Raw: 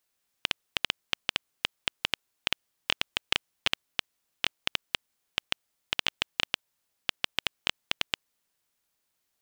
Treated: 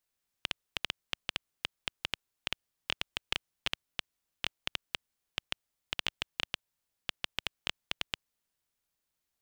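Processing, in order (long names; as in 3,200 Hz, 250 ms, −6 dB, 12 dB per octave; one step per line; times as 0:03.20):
low-shelf EQ 120 Hz +8 dB
level −6.5 dB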